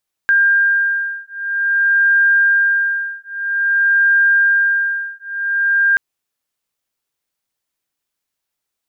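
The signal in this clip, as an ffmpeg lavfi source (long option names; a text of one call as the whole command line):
ffmpeg -f lavfi -i "aevalsrc='0.178*(sin(2*PI*1600*t)+sin(2*PI*1600.51*t))':duration=5.68:sample_rate=44100" out.wav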